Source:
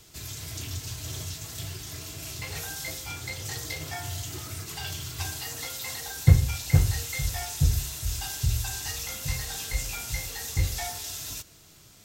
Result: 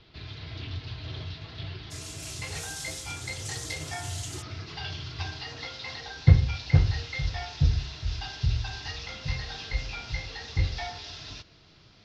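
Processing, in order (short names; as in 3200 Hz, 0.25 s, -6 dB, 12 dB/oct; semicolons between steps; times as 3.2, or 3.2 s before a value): steep low-pass 4400 Hz 48 dB/oct, from 1.9 s 11000 Hz, from 4.41 s 5100 Hz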